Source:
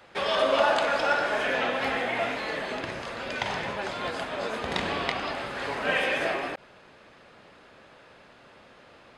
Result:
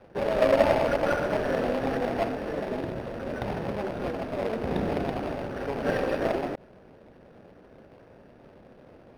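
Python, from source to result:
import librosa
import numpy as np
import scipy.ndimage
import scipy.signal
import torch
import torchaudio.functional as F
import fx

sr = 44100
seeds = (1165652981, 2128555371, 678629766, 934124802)

y = scipy.ndimage.median_filter(x, 41, mode='constant')
y = np.interp(np.arange(len(y)), np.arange(len(y))[::6], y[::6])
y = y * 10.0 ** (6.5 / 20.0)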